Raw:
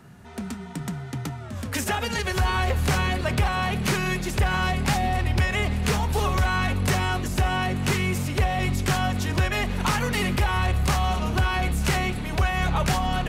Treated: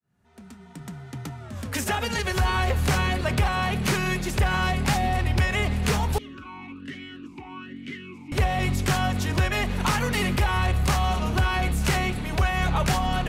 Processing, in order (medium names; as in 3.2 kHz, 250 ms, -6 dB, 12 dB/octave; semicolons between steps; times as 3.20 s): fade-in on the opening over 1.95 s; 6.18–8.32 s: talking filter i-u 1.2 Hz